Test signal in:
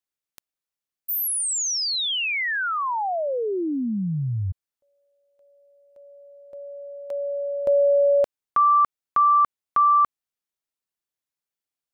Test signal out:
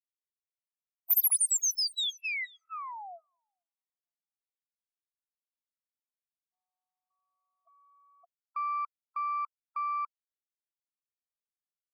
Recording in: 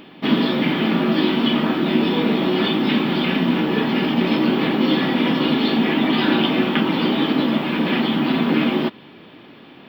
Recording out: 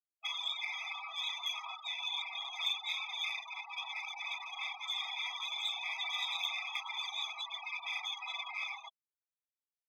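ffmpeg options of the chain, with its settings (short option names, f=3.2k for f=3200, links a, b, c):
-filter_complex "[0:a]lowshelf=f=500:g=-9.5,afftfilt=real='re*gte(hypot(re,im),0.0794)':imag='im*gte(hypot(re,im),0.0794)':win_size=1024:overlap=0.75,aderivative,asplit=2[a][b];[b]acompressor=threshold=-37dB:ratio=6:attack=0.67:release=30:knee=1,volume=0dB[c];[a][c]amix=inputs=2:normalize=0,aeval=exprs='0.188*(cos(1*acos(clip(val(0)/0.188,-1,1)))-cos(1*PI/2))+0.0075*(cos(8*acos(clip(val(0)/0.188,-1,1)))-cos(8*PI/2))':c=same,afftfilt=real='re*eq(mod(floor(b*sr/1024/660),2),1)':imag='im*eq(mod(floor(b*sr/1024/660),2),1)':win_size=1024:overlap=0.75,volume=-2dB"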